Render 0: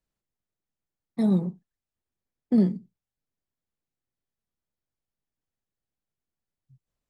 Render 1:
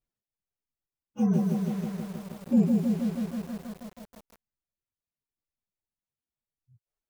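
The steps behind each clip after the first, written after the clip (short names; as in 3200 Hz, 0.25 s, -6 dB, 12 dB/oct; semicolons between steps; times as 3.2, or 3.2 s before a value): inharmonic rescaling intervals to 116%; reverb removal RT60 1 s; lo-fi delay 0.159 s, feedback 80%, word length 8-bit, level -3 dB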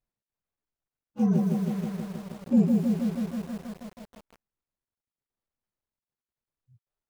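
median filter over 15 samples; gain +1 dB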